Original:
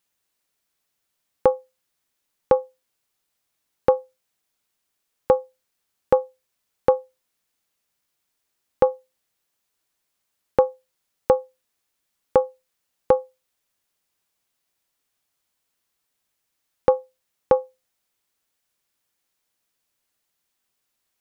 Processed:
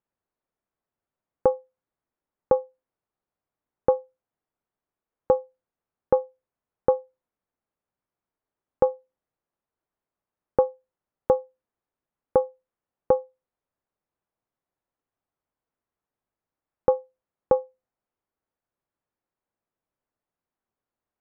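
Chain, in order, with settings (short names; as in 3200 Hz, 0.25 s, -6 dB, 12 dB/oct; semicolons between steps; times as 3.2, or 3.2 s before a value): LPF 1100 Hz 12 dB/oct; gain -2.5 dB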